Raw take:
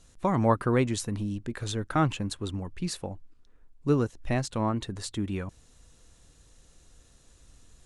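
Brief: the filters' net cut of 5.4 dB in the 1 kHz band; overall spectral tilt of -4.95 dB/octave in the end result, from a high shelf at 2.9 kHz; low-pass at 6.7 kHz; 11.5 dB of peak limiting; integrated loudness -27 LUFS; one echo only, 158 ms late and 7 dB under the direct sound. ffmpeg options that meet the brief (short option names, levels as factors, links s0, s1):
-af "lowpass=6700,equalizer=f=1000:t=o:g=-8,highshelf=f=2900:g=8.5,alimiter=limit=0.0668:level=0:latency=1,aecho=1:1:158:0.447,volume=2.11"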